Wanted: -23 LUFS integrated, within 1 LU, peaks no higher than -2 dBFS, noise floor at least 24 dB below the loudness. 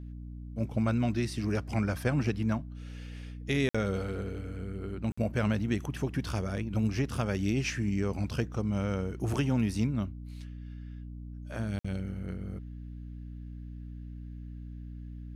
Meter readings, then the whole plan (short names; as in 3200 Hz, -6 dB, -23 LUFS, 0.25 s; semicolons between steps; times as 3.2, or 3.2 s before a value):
dropouts 3; longest dropout 55 ms; hum 60 Hz; harmonics up to 300 Hz; hum level -39 dBFS; loudness -32.0 LUFS; peak -16.0 dBFS; loudness target -23.0 LUFS
-> interpolate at 3.69/5.12/11.79, 55 ms; notches 60/120/180/240/300 Hz; gain +9 dB